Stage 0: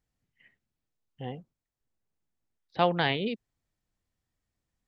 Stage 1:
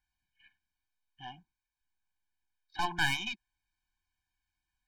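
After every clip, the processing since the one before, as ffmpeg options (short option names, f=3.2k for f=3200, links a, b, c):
-af "equalizer=f=125:t=o:w=1:g=-11,equalizer=f=250:t=o:w=1:g=-9,equalizer=f=500:t=o:w=1:g=-5,equalizer=f=1k:t=o:w=1:g=4,equalizer=f=2k:t=o:w=1:g=10,equalizer=f=4k:t=o:w=1:g=4,aeval=exprs='(tanh(12.6*val(0)+0.65)-tanh(0.65))/12.6':c=same,afftfilt=real='re*eq(mod(floor(b*sr/1024/360),2),0)':imag='im*eq(mod(floor(b*sr/1024/360),2),0)':win_size=1024:overlap=0.75,volume=1.5dB"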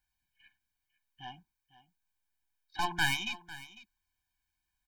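-af "highshelf=f=9.9k:g=8.5,aecho=1:1:500:0.133"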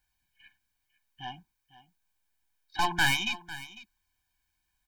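-af "asoftclip=type=hard:threshold=-22.5dB,volume=5.5dB"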